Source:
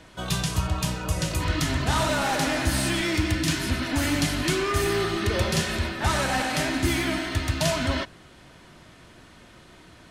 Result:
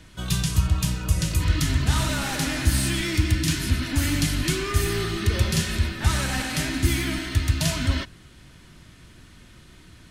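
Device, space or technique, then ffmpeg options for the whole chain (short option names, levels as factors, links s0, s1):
smiley-face EQ: -af "lowshelf=f=130:g=8,equalizer=f=680:t=o:w=1.6:g=-9,highshelf=f=9300:g=5.5"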